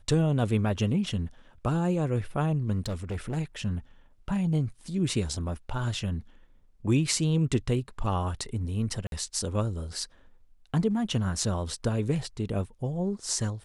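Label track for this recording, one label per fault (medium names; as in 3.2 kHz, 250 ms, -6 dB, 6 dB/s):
2.860000	3.380000	clipped -27.5 dBFS
9.070000	9.120000	dropout 52 ms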